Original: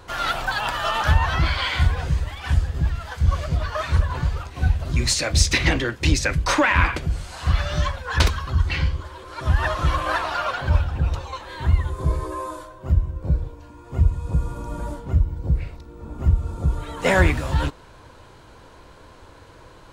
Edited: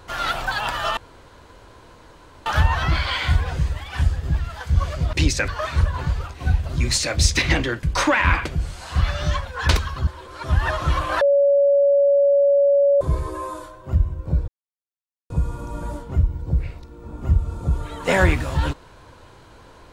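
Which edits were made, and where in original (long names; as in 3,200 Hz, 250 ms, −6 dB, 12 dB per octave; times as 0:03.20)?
0:00.97: splice in room tone 1.49 s
0:05.99–0:06.34: move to 0:03.64
0:08.58–0:09.04: remove
0:10.18–0:11.98: beep over 564 Hz −12.5 dBFS
0:13.45–0:14.27: silence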